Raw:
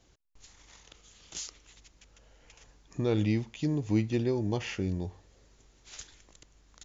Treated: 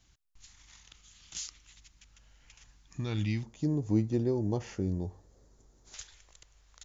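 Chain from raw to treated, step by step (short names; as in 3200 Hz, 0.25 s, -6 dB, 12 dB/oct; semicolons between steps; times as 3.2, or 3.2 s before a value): bell 470 Hz -15 dB 1.5 oct, from 3.43 s 2700 Hz, from 5.94 s 250 Hz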